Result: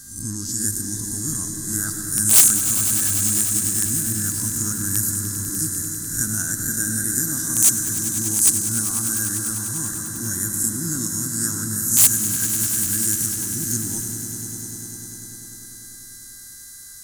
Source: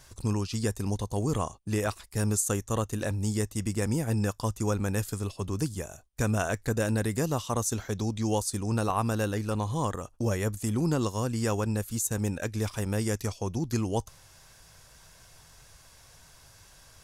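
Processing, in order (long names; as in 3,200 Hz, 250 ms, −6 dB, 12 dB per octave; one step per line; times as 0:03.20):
peak hold with a rise ahead of every peak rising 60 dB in 0.52 s
comb and all-pass reverb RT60 1.5 s, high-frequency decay 0.55×, pre-delay 65 ms, DRR 8 dB
hum with harmonics 400 Hz, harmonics 12, −52 dBFS 0 dB per octave
drawn EQ curve 120 Hz 0 dB, 310 Hz +3 dB, 490 Hz −22 dB, 1,100 Hz −11 dB, 1,600 Hz +6 dB, 2,400 Hz −23 dB, 6,500 Hz +11 dB, 9,200 Hz +13 dB
wrap-around overflow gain 7.5 dB
high-shelf EQ 4,800 Hz +9.5 dB
on a send: echo that builds up and dies away 99 ms, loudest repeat 5, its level −12.5 dB
on the sum: level −4 dB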